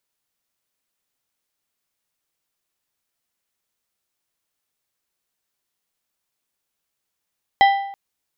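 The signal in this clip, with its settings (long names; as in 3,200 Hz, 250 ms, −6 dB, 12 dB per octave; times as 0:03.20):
struck metal plate, length 0.33 s, lowest mode 792 Hz, decay 0.75 s, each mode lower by 7 dB, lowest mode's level −8 dB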